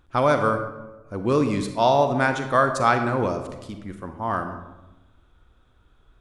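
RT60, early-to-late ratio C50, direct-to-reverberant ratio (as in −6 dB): 1.0 s, 8.0 dB, 7.0 dB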